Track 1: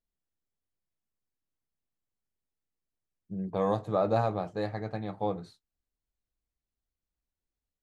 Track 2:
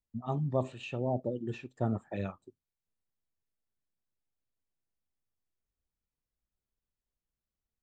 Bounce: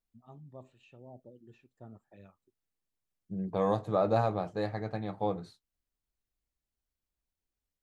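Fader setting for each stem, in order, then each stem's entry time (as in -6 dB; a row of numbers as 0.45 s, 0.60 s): -0.5 dB, -19.0 dB; 0.00 s, 0.00 s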